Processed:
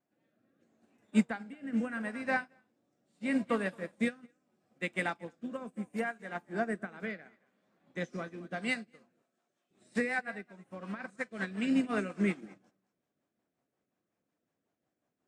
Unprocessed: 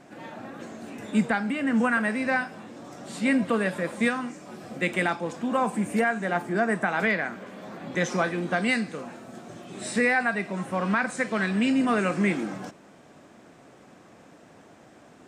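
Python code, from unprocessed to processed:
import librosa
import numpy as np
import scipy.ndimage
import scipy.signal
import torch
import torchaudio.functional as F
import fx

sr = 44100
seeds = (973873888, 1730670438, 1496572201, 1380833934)

y = x + 10.0 ** (-13.5 / 20.0) * np.pad(x, (int(223 * sr / 1000.0), 0))[:len(x)]
y = fx.rotary_switch(y, sr, hz=0.75, then_hz=5.5, switch_at_s=8.36)
y = fx.highpass(y, sr, hz=860.0, slope=6, at=(9.22, 9.71))
y = fx.upward_expand(y, sr, threshold_db=-40.0, expansion=2.5)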